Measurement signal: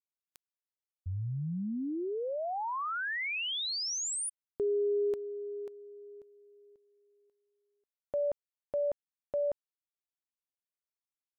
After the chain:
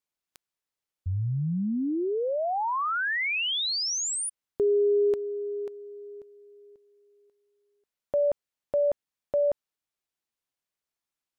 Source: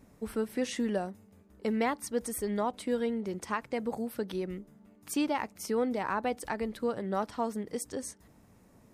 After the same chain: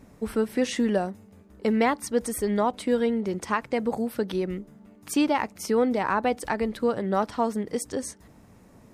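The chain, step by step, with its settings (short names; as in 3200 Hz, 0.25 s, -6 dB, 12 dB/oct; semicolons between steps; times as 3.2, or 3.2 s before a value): high shelf 9000 Hz -5.5 dB; gain +7 dB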